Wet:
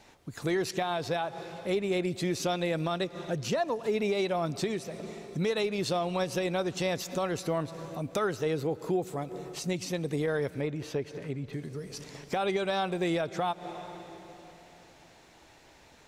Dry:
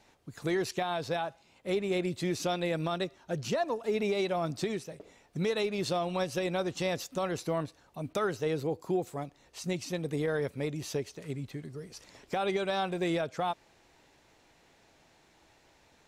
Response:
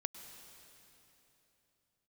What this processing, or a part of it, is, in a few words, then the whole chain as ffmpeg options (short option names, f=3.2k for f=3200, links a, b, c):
ducked reverb: -filter_complex "[0:a]asplit=3[a][b][c];[1:a]atrim=start_sample=2205[d];[b][d]afir=irnorm=-1:irlink=0[e];[c]apad=whole_len=708816[f];[e][f]sidechaincompress=threshold=-46dB:ratio=8:attack=36:release=134,volume=2dB[g];[a][g]amix=inputs=2:normalize=0,asettb=1/sr,asplit=3[h][i][j];[h]atrim=end=10.614[k];[i]atrim=start=10.61:end=11.53,asetpts=PTS-STARTPTS,afade=t=in:d=0.004:c=qsin,afade=t=out:st=0.916:d=0.004:c=qsin,bass=f=250:g=-1,treble=f=4k:g=-12[l];[j]atrim=start=11.526[m];[k][l]acrossfade=d=0.004:c1=hsin:c2=qsin[n];[n][m]acrossfade=d=0.004:c1=qsin:c2=hsin"